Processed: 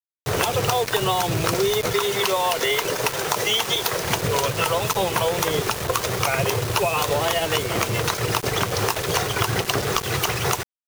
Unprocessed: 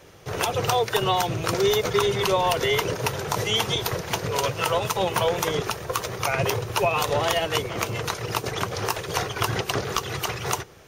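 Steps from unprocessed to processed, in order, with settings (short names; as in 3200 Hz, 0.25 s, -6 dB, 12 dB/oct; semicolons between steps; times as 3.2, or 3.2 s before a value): 1.93–4.02 HPF 440 Hz 6 dB/oct; compressor 6:1, threshold -26 dBFS, peak gain reduction 9 dB; requantised 6-bit, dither none; gain +7.5 dB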